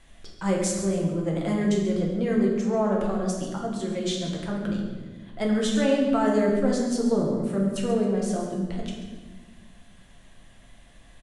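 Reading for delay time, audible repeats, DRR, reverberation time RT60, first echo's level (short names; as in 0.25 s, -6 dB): 0.137 s, 1, -2.0 dB, 1.3 s, -11.5 dB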